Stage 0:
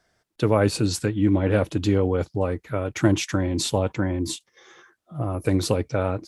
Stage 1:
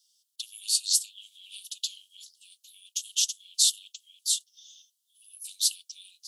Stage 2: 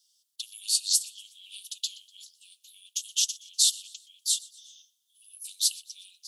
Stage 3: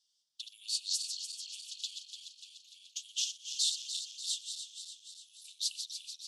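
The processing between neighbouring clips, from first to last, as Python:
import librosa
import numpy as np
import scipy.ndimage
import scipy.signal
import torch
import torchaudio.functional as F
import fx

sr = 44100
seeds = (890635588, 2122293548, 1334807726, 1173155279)

y1 = scipy.signal.sosfilt(scipy.signal.butter(16, 2900.0, 'highpass', fs=sr, output='sos'), x)
y1 = fx.high_shelf(y1, sr, hz=4100.0, db=10.0)
y2 = fx.echo_feedback(y1, sr, ms=122, feedback_pct=44, wet_db=-22)
y3 = fx.reverse_delay_fb(y2, sr, ms=147, feedback_pct=76, wet_db=-7)
y3 = fx.air_absorb(y3, sr, metres=78.0)
y3 = y3 * 10.0 ** (-4.5 / 20.0)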